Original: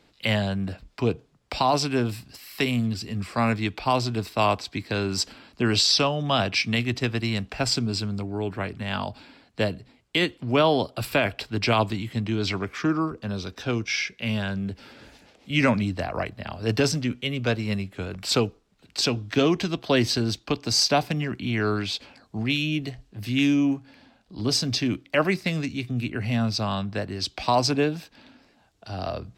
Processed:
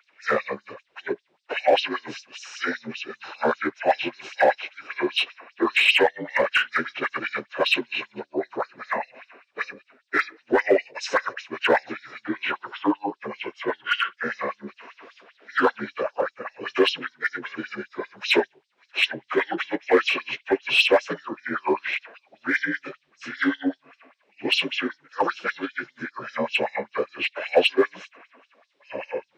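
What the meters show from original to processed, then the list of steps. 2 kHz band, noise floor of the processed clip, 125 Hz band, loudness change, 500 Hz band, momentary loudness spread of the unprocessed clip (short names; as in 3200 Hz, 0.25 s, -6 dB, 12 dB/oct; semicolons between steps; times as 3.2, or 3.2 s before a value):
+5.5 dB, -70 dBFS, -21.5 dB, +0.5 dB, +2.5 dB, 10 LU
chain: inharmonic rescaling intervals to 80%; notches 50/100/150 Hz; LFO high-pass sine 5.1 Hz 370–5400 Hz; in parallel at -7 dB: hard clip -20.5 dBFS, distortion -8 dB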